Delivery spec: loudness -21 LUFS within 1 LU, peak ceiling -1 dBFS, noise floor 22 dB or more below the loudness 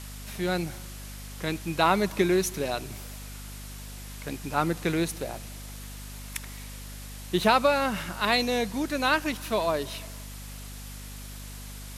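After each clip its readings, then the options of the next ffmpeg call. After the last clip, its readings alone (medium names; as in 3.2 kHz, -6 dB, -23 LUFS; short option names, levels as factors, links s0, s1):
hum 50 Hz; highest harmonic 250 Hz; hum level -39 dBFS; noise floor -41 dBFS; noise floor target -49 dBFS; loudness -27.0 LUFS; peak level -6.0 dBFS; loudness target -21.0 LUFS
-> -af "bandreject=f=50:t=h:w=4,bandreject=f=100:t=h:w=4,bandreject=f=150:t=h:w=4,bandreject=f=200:t=h:w=4,bandreject=f=250:t=h:w=4"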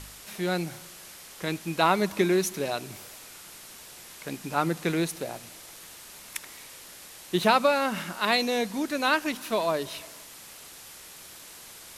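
hum not found; noise floor -47 dBFS; noise floor target -49 dBFS
-> -af "afftdn=nr=6:nf=-47"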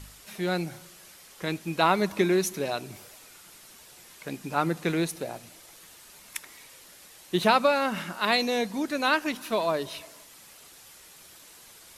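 noise floor -51 dBFS; loudness -27.0 LUFS; peak level -5.5 dBFS; loudness target -21.0 LUFS
-> -af "volume=2,alimiter=limit=0.891:level=0:latency=1"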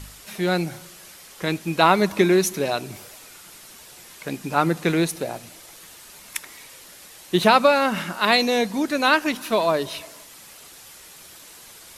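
loudness -21.0 LUFS; peak level -1.0 dBFS; noise floor -45 dBFS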